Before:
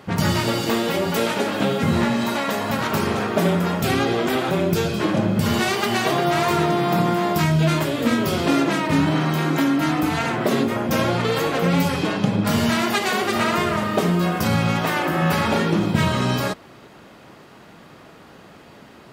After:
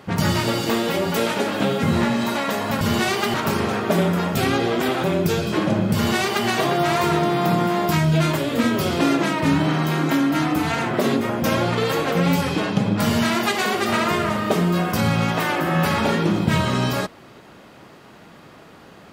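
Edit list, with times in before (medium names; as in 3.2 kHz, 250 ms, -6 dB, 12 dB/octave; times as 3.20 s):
5.41–5.94 s: copy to 2.81 s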